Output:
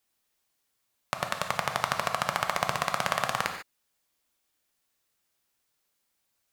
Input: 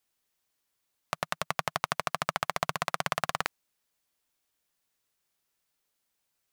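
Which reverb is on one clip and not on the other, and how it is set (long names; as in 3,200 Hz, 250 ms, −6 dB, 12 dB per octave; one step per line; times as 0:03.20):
reverb whose tail is shaped and stops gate 170 ms flat, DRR 4.5 dB
level +1.5 dB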